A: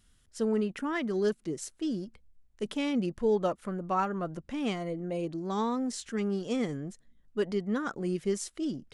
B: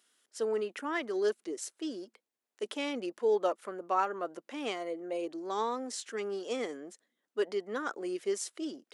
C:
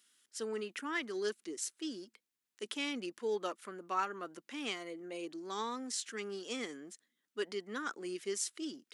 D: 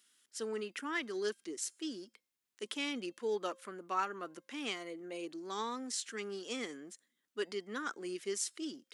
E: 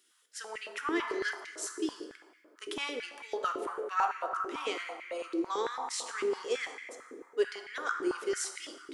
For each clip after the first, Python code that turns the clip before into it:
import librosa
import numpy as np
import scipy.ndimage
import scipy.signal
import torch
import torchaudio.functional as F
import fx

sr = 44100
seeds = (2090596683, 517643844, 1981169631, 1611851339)

y1 = scipy.signal.sosfilt(scipy.signal.butter(4, 340.0, 'highpass', fs=sr, output='sos'), x)
y2 = fx.peak_eq(y1, sr, hz=610.0, db=-14.0, octaves=1.6)
y2 = y2 * 10.0 ** (2.0 / 20.0)
y3 = fx.comb_fb(y2, sr, f0_hz=530.0, decay_s=0.55, harmonics='all', damping=0.0, mix_pct=30)
y3 = y3 * 10.0 ** (3.0 / 20.0)
y4 = fx.rev_plate(y3, sr, seeds[0], rt60_s=2.8, hf_ratio=0.35, predelay_ms=0, drr_db=3.0)
y4 = fx.filter_held_highpass(y4, sr, hz=9.0, low_hz=360.0, high_hz=2100.0)